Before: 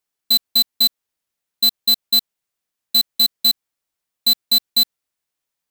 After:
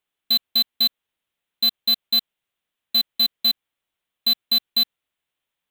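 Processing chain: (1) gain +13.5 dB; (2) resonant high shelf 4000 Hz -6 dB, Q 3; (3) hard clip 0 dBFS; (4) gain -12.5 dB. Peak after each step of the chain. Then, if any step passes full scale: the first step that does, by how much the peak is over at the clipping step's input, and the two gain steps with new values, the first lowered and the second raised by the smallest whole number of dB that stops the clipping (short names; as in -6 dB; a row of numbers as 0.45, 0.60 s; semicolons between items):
+1.0, +3.5, 0.0, -12.5 dBFS; step 1, 3.5 dB; step 1 +9.5 dB, step 4 -8.5 dB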